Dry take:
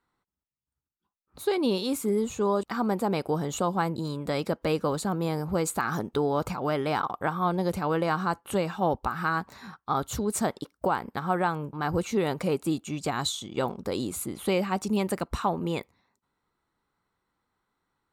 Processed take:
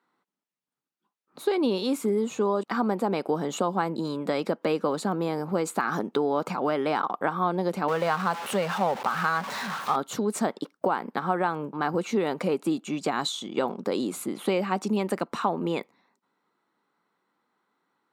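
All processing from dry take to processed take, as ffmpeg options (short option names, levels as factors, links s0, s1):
-filter_complex "[0:a]asettb=1/sr,asplit=3[s0][s1][s2];[s0]atrim=end=7.884[s3];[s1]atrim=start=7.88:end=9.96,asetpts=PTS-STARTPTS,afade=t=in:d=0.004:c=qsin,afade=t=out:st=2.076:d=0.004:c=qsin,aeval=exprs='val(0)+0.5*0.0282*sgn(val(0))':c=same,equalizer=f=310:w=2.4:g=-14[s4];[s2]atrim=start=9.956[s5];[s3][s4]acrossfade=d=0.004:c1=hsin:c2=qsin[s6];[s6][s5]acrossfade=d=0.004:c1=qsin:c2=hsin,acompressor=threshold=0.0447:ratio=2.5,highpass=f=190:w=0.5412,highpass=f=190:w=1.3066,highshelf=f=6100:g=-11,volume=1.78"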